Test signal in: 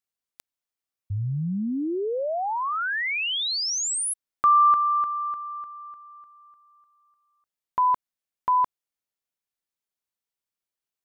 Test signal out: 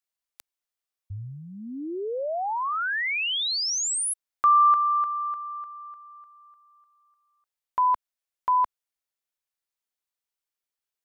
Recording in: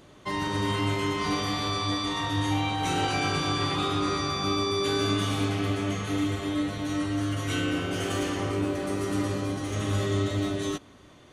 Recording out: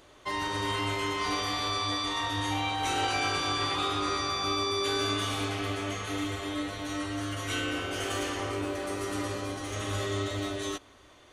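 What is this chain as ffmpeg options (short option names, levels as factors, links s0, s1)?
-af "equalizer=f=170:w=0.97:g=-14.5"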